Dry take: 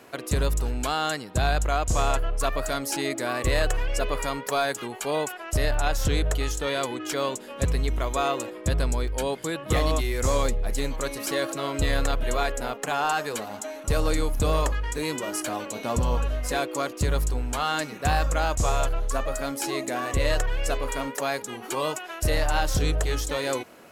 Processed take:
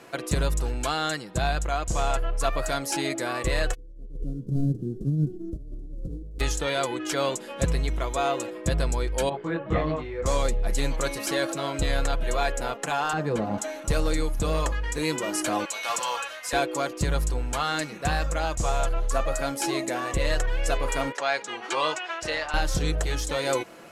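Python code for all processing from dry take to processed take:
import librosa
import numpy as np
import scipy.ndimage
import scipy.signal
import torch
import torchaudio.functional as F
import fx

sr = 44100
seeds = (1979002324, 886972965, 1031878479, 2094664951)

y = fx.envelope_flatten(x, sr, power=0.1, at=(3.73, 6.39), fade=0.02)
y = fx.cheby2_lowpass(y, sr, hz=820.0, order=4, stop_db=50, at=(3.73, 6.39), fade=0.02)
y = fx.over_compress(y, sr, threshold_db=-39.0, ratio=-0.5, at=(3.73, 6.39), fade=0.02)
y = fx.chain(y, sr, fx.lowpass(hz=1700.0, slope=12),
    fx.hum_notches(base_hz=60, count=9),
    fx.detune_double(cents=19), at=(9.29, 10.26))
y = fx.chain(y, sr, fx.highpass(hz=58.0, slope=12),
    fx.tilt_eq(slope=-4.5), at=(13.13, 13.58))
y = fx.chain(y, sr, fx.highpass(hz=1200.0, slope=12),
    fx.clip_hard(threshold_db=-29.5), at=(15.65, 16.53))
y = fx.chain(y, sr, fx.highpass(hz=1100.0, slope=6),
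    fx.air_absorb(metres=120.0), at=(21.12, 22.54))
y = scipy.signal.sosfilt(scipy.signal.butter(2, 11000.0, 'lowpass', fs=sr, output='sos'), y)
y = y + 0.39 * np.pad(y, (int(5.9 * sr / 1000.0), 0))[:len(y)]
y = fx.rider(y, sr, range_db=10, speed_s=0.5)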